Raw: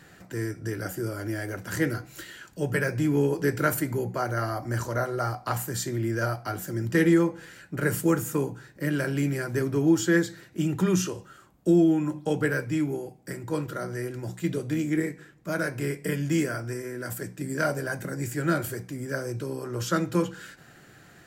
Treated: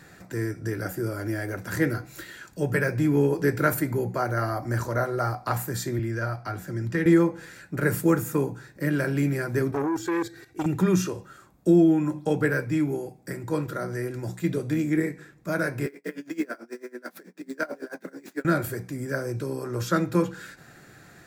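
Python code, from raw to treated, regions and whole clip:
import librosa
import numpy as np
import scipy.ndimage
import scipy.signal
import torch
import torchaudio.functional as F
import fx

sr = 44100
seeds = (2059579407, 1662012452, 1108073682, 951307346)

y = fx.chain(x, sr, fx.lowpass(hz=3000.0, slope=6),
    fx.peak_eq(hz=420.0, db=-5.5, octaves=3.0),
    fx.band_squash(depth_pct=40), at=(5.99, 7.06))
y = fx.chain(y, sr, fx.comb(ms=2.6, depth=0.81),
    fx.level_steps(step_db=12),
    fx.transformer_sat(knee_hz=800.0), at=(9.71, 10.66))
y = fx.chain(y, sr, fx.median_filter(points=5),
    fx.steep_highpass(hz=200.0, slope=48),
    fx.tremolo_db(hz=9.1, depth_db=25), at=(15.86, 18.45))
y = fx.notch(y, sr, hz=3000.0, q=7.4)
y = fx.dynamic_eq(y, sr, hz=7100.0, q=0.81, threshold_db=-50.0, ratio=4.0, max_db=-5)
y = F.gain(torch.from_numpy(y), 2.0).numpy()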